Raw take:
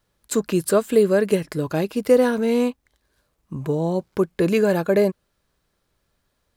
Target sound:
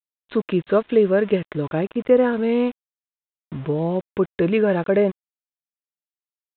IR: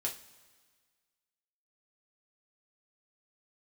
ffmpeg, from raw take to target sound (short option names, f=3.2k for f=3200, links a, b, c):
-filter_complex "[0:a]asettb=1/sr,asplit=3[a][b][c];[a]atrim=end=1.654[d];[b]atrim=start=1.65:end=2.33,asetpts=PTS-STARTPTS,afade=t=in:d=0.004:c=qsin,afade=t=out:st=0.676:d=0.004:c=qsin,acrossover=split=3000[e][f];[f]acompressor=threshold=-47dB:ratio=4:attack=1:release=60[g];[e][g]amix=inputs=2:normalize=0[h];[c]atrim=start=2.326[i];[d][h]acrossfade=d=0.004:c1=hsin:c2=qsin[j];[j][i]acrossfade=d=0.004:c1=qsin:c2=hsin,aeval=exprs='val(0)*gte(abs(val(0)),0.0158)':c=same,aresample=8000,aresample=44100"